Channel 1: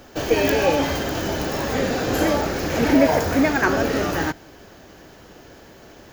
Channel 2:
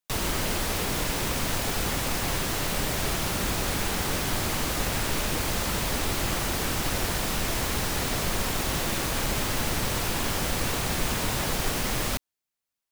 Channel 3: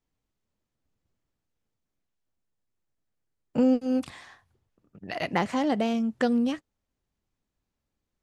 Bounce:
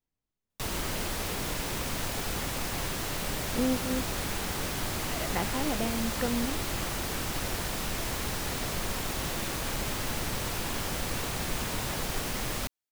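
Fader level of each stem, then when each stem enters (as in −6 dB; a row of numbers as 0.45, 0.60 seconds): muted, −5.0 dB, −7.0 dB; muted, 0.50 s, 0.00 s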